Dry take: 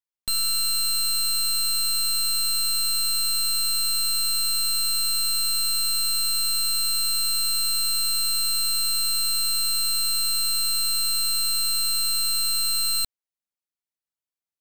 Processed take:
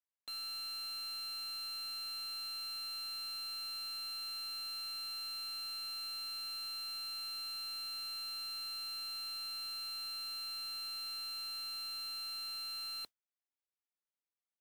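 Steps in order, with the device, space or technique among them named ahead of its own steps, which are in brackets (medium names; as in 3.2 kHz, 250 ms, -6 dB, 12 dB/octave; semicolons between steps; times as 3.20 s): carbon microphone (band-pass 370–3100 Hz; saturation -34.5 dBFS, distortion -13 dB; modulation noise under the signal 23 dB); trim -5.5 dB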